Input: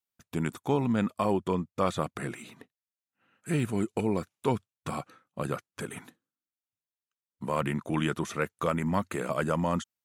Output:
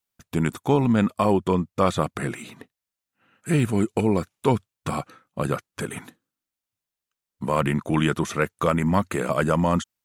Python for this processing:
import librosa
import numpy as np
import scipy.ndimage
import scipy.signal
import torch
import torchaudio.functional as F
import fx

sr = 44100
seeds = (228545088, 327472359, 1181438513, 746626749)

y = fx.low_shelf(x, sr, hz=62.0, db=8.0)
y = y * librosa.db_to_amplitude(6.5)